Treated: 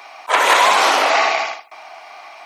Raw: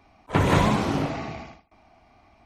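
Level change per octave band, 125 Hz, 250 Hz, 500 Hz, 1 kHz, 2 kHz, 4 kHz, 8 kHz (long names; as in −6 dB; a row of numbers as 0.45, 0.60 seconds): below −30 dB, −10.5 dB, +8.0 dB, +13.5 dB, +15.5 dB, +16.5 dB, +16.5 dB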